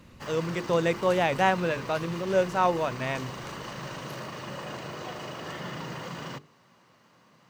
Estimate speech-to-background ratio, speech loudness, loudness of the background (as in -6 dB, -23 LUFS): 11.5 dB, -27.0 LUFS, -38.5 LUFS